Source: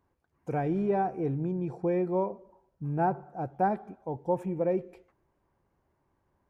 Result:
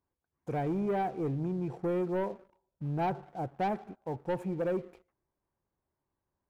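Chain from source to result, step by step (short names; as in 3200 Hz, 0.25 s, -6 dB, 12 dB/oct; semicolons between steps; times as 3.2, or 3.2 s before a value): sample leveller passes 2; gain -8.5 dB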